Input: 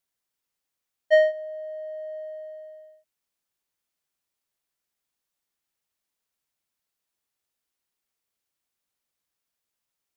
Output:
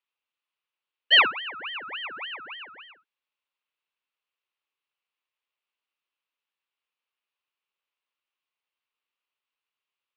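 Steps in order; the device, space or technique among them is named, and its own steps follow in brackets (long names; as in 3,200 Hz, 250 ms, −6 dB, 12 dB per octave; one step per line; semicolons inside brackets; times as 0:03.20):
voice changer toy (ring modulator whose carrier an LFO sweeps 1,600 Hz, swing 60%, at 3.5 Hz; loudspeaker in its box 500–3,800 Hz, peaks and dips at 690 Hz −7 dB, 1,100 Hz +4 dB, 1,700 Hz −3 dB, 2,700 Hz +7 dB)
level +2 dB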